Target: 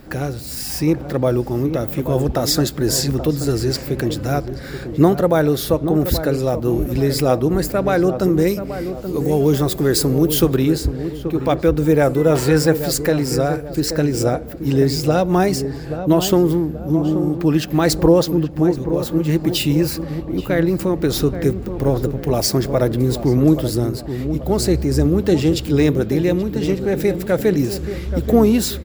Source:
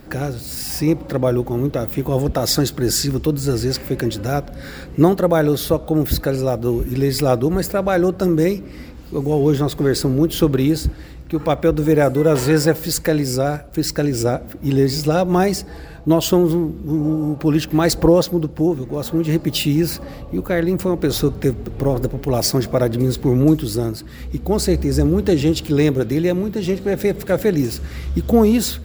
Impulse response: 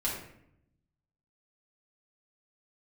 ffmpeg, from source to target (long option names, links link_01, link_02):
-filter_complex "[0:a]asettb=1/sr,asplit=3[link_01][link_02][link_03];[link_01]atrim=end=8.474[link_04];[link_02]atrim=start=8.47:end=10.57,asetpts=PTS-STARTPTS,afade=type=in:duration=0.004:curve=qsin,afade=type=out:start_time=2.096:duration=0.004:curve=qsin,highshelf=frequency=6100:gain=10[link_05];[link_03]atrim=start=10.566[link_06];[link_04][link_05]acrossfade=duration=0.004:curve1=hsin:curve2=qsin[link_07];[link_07][link_06]acrossfade=duration=0.004:curve1=qsin:curve2=hsin,asplit=2[link_08][link_09];[link_09]adelay=830,lowpass=frequency=1100:poles=1,volume=-9dB,asplit=2[link_10][link_11];[link_11]adelay=830,lowpass=frequency=1100:poles=1,volume=0.46,asplit=2[link_12][link_13];[link_13]adelay=830,lowpass=frequency=1100:poles=1,volume=0.46,asplit=2[link_14][link_15];[link_15]adelay=830,lowpass=frequency=1100:poles=1,volume=0.46,asplit=2[link_16][link_17];[link_17]adelay=830,lowpass=frequency=1100:poles=1,volume=0.46[link_18];[link_08][link_10][link_12][link_14][link_16][link_18]amix=inputs=6:normalize=0"